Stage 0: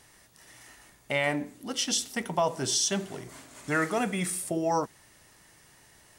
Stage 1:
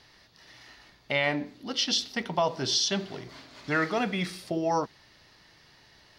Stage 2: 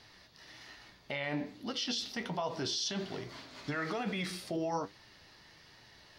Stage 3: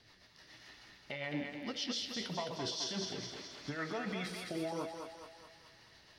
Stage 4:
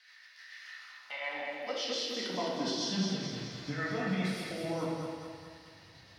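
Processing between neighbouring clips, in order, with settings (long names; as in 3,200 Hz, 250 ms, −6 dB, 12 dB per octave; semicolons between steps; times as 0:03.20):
high shelf with overshoot 6,200 Hz −12 dB, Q 3
brickwall limiter −25.5 dBFS, peak gain reduction 11.5 dB; flanger 1.2 Hz, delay 8.4 ms, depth 6.3 ms, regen +62%; level +3.5 dB
rotating-speaker cabinet horn 7 Hz; on a send: feedback echo with a high-pass in the loop 212 ms, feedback 59%, high-pass 440 Hz, level −4 dB; on the sum: level −2 dB
high-pass filter sweep 1,700 Hz → 92 Hz, 0:00.59–0:03.55; rectangular room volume 470 cubic metres, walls mixed, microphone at 2 metres; level −1.5 dB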